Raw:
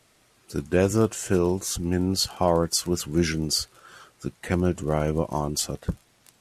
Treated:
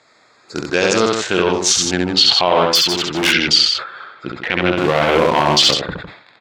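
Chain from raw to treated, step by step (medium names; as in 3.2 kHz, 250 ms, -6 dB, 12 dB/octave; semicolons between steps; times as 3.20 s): local Wiener filter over 15 samples; loudspeakers at several distances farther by 23 m -4 dB, 53 m -9 dB; low-pass sweep 6.7 kHz -> 3.2 kHz, 0.65–1.41 s; 1.53–2.15 s: resonant high shelf 4.6 kHz +11 dB, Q 1.5; 4.77–5.74 s: waveshaping leveller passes 2; peaking EQ 3.2 kHz +9.5 dB 2.2 oct; 2.75–3.33 s: hard clipper -20 dBFS, distortion -19 dB; high-pass 690 Hz 6 dB/octave; loudness maximiser +12.5 dB; decay stretcher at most 97 dB/s; trim -1 dB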